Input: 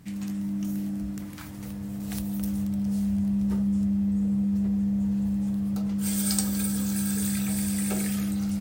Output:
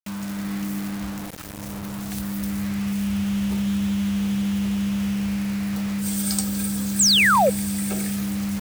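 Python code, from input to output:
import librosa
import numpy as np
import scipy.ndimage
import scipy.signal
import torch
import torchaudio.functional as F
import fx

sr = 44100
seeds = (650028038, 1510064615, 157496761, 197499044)

y = fx.quant_dither(x, sr, seeds[0], bits=6, dither='none')
y = fx.spec_paint(y, sr, seeds[1], shape='fall', start_s=6.99, length_s=0.51, low_hz=470.0, high_hz=8600.0, level_db=-18.0)
y = y * librosa.db_to_amplitude(1.5)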